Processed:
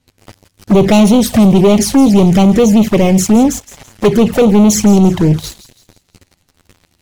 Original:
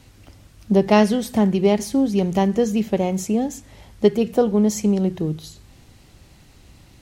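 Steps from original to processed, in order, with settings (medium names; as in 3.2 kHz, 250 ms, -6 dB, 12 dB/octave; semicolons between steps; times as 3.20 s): waveshaping leveller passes 5; touch-sensitive flanger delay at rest 11.9 ms, full sweep at -5 dBFS; feedback echo behind a high-pass 166 ms, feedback 40%, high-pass 3.2 kHz, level -14 dB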